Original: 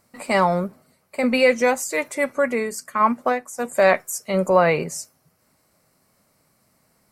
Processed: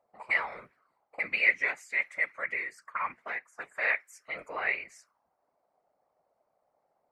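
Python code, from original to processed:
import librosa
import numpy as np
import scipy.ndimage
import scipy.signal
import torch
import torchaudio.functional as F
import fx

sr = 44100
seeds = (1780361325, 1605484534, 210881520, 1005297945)

y = fx.auto_wah(x, sr, base_hz=690.0, top_hz=2100.0, q=4.4, full_db=-22.5, direction='up')
y = fx.whisperise(y, sr, seeds[0])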